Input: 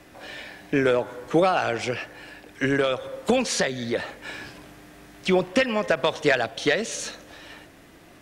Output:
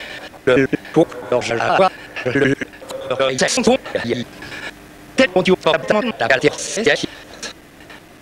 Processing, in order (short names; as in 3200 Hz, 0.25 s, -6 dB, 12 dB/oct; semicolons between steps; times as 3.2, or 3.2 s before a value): slices in reverse order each 94 ms, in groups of 5; gain +7.5 dB